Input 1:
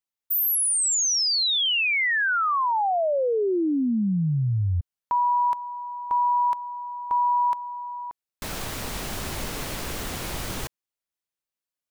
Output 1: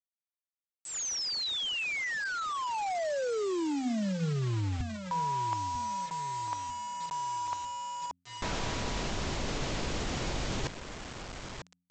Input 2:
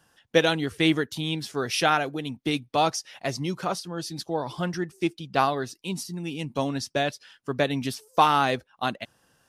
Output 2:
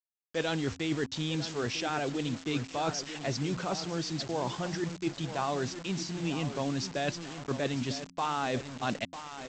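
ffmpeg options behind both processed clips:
-filter_complex "[0:a]agate=range=0.0224:threshold=0.00501:ratio=3:release=163:detection=peak,areverse,acompressor=threshold=0.0158:ratio=10:attack=21:release=75:knee=6:detection=peak,areverse,highshelf=f=5700:g=-8,asplit=2[s0][s1];[s1]adelay=947,lowpass=f=2600:p=1,volume=0.282,asplit=2[s2][s3];[s3]adelay=947,lowpass=f=2600:p=1,volume=0.39,asplit=2[s4][s5];[s5]adelay=947,lowpass=f=2600:p=1,volume=0.39,asplit=2[s6][s7];[s7]adelay=947,lowpass=f=2600:p=1,volume=0.39[s8];[s0][s2][s4][s6][s8]amix=inputs=5:normalize=0,adynamicequalizer=threshold=0.00355:dfrequency=1400:dqfactor=0.83:tfrequency=1400:tqfactor=0.83:attack=5:release=100:ratio=0.375:range=2:mode=cutabove:tftype=bell,aresample=16000,acrusher=bits=7:mix=0:aa=0.000001,aresample=44100,bandreject=f=88.7:t=h:w=4,bandreject=f=177.4:t=h:w=4,bandreject=f=266.1:t=h:w=4,volume=1.78"

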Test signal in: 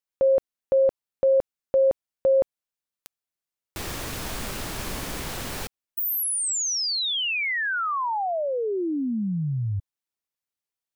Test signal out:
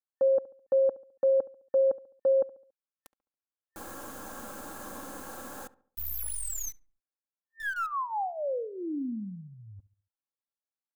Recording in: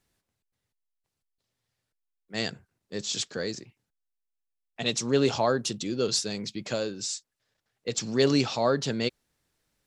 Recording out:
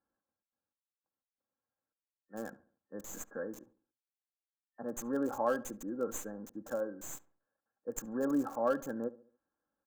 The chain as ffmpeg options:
-filter_complex "[0:a]highpass=f=320:p=1,aecho=1:1:3.7:0.61,afftfilt=real='re*(1-between(b*sr/4096,1800,6000))':imag='im*(1-between(b*sr/4096,1800,6000))':win_size=4096:overlap=0.75,acrossover=split=2100[s0][s1];[s1]acrusher=bits=4:dc=4:mix=0:aa=0.000001[s2];[s0][s2]amix=inputs=2:normalize=0,asplit=2[s3][s4];[s4]adelay=70,lowpass=f=1600:p=1,volume=0.126,asplit=2[s5][s6];[s6]adelay=70,lowpass=f=1600:p=1,volume=0.44,asplit=2[s7][s8];[s8]adelay=70,lowpass=f=1600:p=1,volume=0.44,asplit=2[s9][s10];[s10]adelay=70,lowpass=f=1600:p=1,volume=0.44[s11];[s3][s5][s7][s9][s11]amix=inputs=5:normalize=0,volume=0.473"

